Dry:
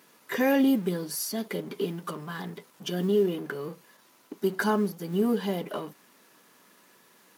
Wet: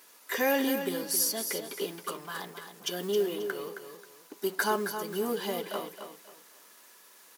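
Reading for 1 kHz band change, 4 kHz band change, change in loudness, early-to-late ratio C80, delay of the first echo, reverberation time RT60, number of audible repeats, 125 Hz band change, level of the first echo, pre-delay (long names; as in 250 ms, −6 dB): 0.0 dB, +3.0 dB, −2.5 dB, no reverb audible, 268 ms, no reverb audible, 3, −12.5 dB, −8.5 dB, no reverb audible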